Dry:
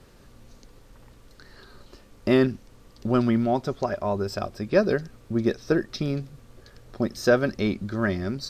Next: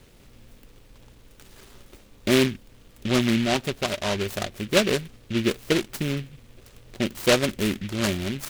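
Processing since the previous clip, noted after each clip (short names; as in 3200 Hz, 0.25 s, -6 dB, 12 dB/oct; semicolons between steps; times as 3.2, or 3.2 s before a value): noise-modulated delay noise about 2400 Hz, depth 0.17 ms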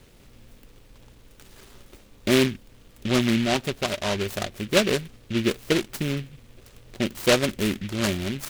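nothing audible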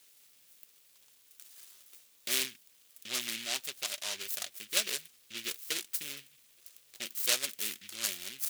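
differentiator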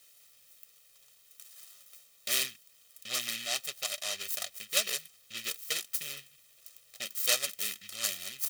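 comb 1.6 ms, depth 69%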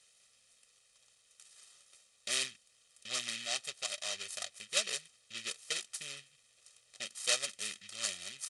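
downsampling 22050 Hz; gain -3 dB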